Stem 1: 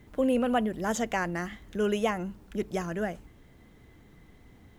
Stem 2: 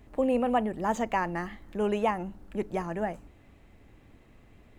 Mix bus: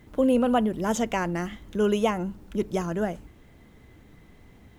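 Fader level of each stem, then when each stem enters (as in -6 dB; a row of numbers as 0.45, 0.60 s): +2.0, -4.5 dB; 0.00, 0.00 s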